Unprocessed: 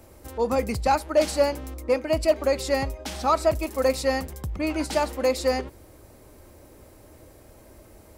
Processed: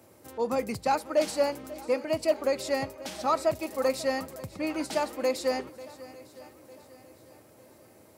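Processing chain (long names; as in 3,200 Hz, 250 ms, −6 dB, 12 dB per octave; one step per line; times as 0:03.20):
high-pass filter 110 Hz 24 dB per octave
on a send: feedback echo with a long and a short gap by turns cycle 903 ms, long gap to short 1.5 to 1, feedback 39%, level −18 dB
on the sum: level −4.5 dB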